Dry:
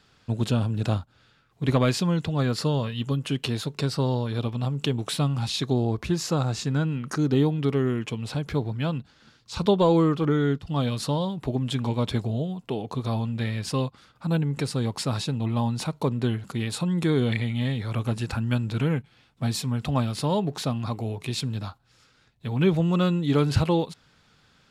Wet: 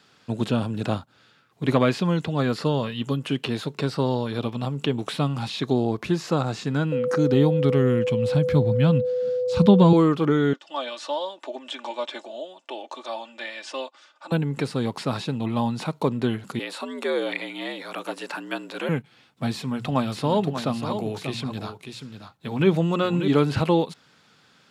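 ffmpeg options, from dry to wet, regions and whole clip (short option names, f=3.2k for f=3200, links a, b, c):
-filter_complex "[0:a]asettb=1/sr,asplit=3[a][b][c];[a]atrim=end=6.924[d];[b]atrim=start=6.92:end=9.93,asetpts=PTS-STARTPTS,afade=t=in:d=0.004:c=qsin,afade=t=out:st=3.006:d=0.004:c=qsin,asubboost=boost=9.5:cutoff=170,aeval=exprs='val(0)+0.0562*sin(2*PI*500*n/s)':c=same[e];[c]atrim=start=9.926[f];[d][e]acrossfade=d=0.004:c1=hsin:c2=qsin[g];[g][f]acrossfade=d=0.004:c1=qsin:c2=hsin,asettb=1/sr,asplit=3[h][i][j];[h]atrim=end=10.534[k];[i]atrim=start=10.53:end=14.32,asetpts=PTS-STARTPTS,afade=t=in:d=0.004:c=qsin,afade=t=out:st=3.786:d=0.004:c=qsin,highpass=f=460:w=0.5412,highpass=f=460:w=1.3066,equalizer=f=460:t=q:w=4:g=-9,equalizer=f=910:t=q:w=4:g=-3,equalizer=f=1.3k:t=q:w=4:g=-4,equalizer=f=2.1k:t=q:w=4:g=-3,equalizer=f=4.4k:t=q:w=4:g=-6,lowpass=f=7.6k:w=0.5412,lowpass=f=7.6k:w=1.3066,aecho=1:1:3.4:0.63,atrim=end_sample=167139[l];[j]atrim=start=14.316[m];[k][l]acrossfade=d=0.004:c1=hsin:c2=qsin[n];[n][m]acrossfade=d=0.004:c1=qsin:c2=hsin,asettb=1/sr,asplit=3[o][p][q];[o]atrim=end=16.594[r];[p]atrim=start=16.59:end=18.89,asetpts=PTS-STARTPTS,afade=t=in:d=0.004:c=qsin,afade=t=out:st=2.296:d=0.004:c=qsin,highpass=400,afreqshift=71[s];[q]atrim=start=18.886[t];[r][s]acrossfade=d=0.004:c1=hsin:c2=qsin[u];[u][t]acrossfade=d=0.004:c1=qsin:c2=hsin,asettb=1/sr,asplit=3[v][w][x];[v]atrim=end=19.534[y];[w]atrim=start=19.53:end=23.28,asetpts=PTS-STARTPTS,afade=t=in:d=0.004:c=qsin,afade=t=out:st=3.746:d=0.004:c=qsin,bandreject=f=60:t=h:w=6,bandreject=f=120:t=h:w=6,bandreject=f=180:t=h:w=6,aecho=1:1:589:0.355,atrim=end_sample=165375[z];[x]atrim=start=23.276[aa];[y][z]acrossfade=d=0.004:c1=hsin:c2=qsin[ab];[ab][aa]acrossfade=d=0.004:c1=qsin:c2=hsin,acrossover=split=3300[ac][ad];[ad]acompressor=threshold=-44dB:ratio=4:attack=1:release=60[ae];[ac][ae]amix=inputs=2:normalize=0,highpass=170,volume=3.5dB"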